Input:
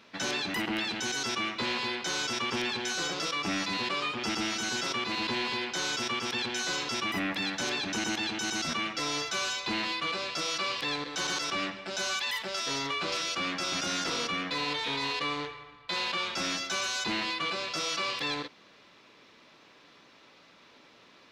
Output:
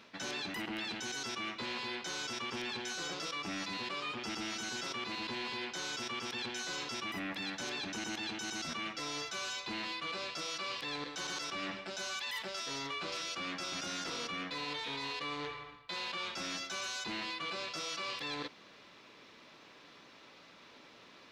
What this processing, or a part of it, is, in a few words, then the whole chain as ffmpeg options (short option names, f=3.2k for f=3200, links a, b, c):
compression on the reversed sound: -af "areverse,acompressor=threshold=-38dB:ratio=4,areverse"